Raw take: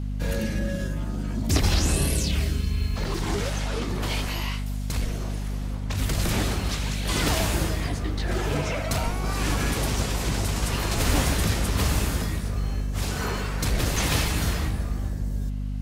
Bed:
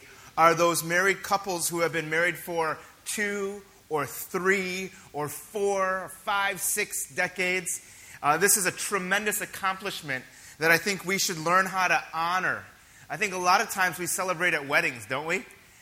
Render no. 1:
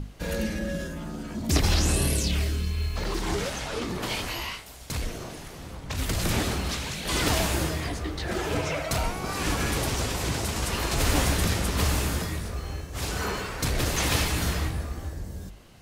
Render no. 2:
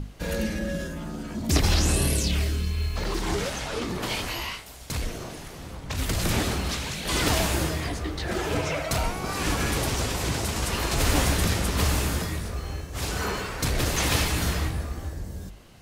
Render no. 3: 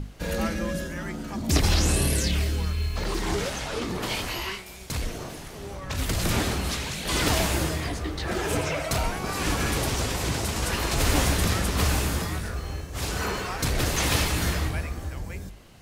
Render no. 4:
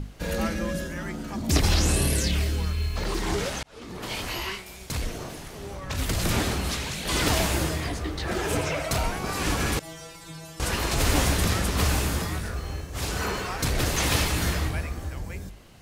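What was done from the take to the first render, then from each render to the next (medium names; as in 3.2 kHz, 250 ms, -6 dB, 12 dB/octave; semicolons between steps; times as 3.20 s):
hum notches 50/100/150/200/250 Hz
trim +1 dB
add bed -16 dB
3.63–4.35 s: fade in; 9.79–10.60 s: inharmonic resonator 160 Hz, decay 0.52 s, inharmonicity 0.002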